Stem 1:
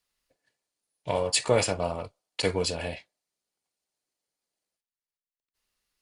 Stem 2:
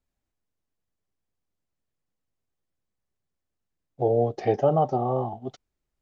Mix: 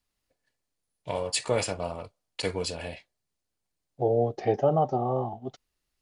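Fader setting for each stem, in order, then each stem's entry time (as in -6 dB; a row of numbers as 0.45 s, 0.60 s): -3.5 dB, -2.0 dB; 0.00 s, 0.00 s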